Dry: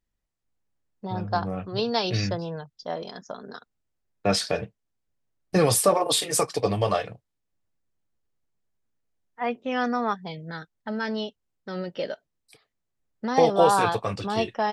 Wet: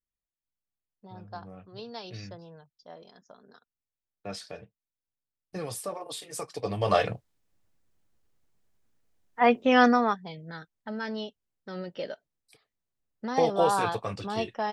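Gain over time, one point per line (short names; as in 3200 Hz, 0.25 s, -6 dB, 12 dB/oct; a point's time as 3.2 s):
6.27 s -15.5 dB
6.82 s -4.5 dB
7.05 s +7 dB
9.85 s +7 dB
10.26 s -5 dB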